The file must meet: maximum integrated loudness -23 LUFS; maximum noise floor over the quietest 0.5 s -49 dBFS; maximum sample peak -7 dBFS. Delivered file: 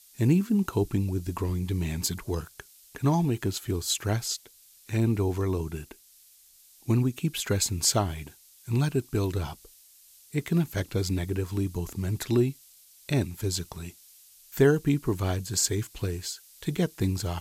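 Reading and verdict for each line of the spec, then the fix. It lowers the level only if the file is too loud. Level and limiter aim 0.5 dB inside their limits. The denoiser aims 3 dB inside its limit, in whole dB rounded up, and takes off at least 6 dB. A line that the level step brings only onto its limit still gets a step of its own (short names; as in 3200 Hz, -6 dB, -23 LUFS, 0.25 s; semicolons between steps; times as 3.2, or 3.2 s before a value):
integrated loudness -28.0 LUFS: OK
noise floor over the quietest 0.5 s -57 dBFS: OK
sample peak -9.5 dBFS: OK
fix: none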